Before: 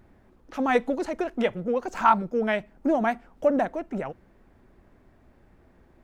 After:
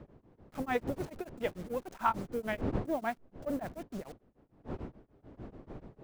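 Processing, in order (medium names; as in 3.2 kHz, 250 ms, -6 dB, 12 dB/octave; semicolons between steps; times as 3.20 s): send-on-delta sampling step -37 dBFS; wind noise 340 Hz -32 dBFS; tremolo of two beating tones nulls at 6.8 Hz; trim -8.5 dB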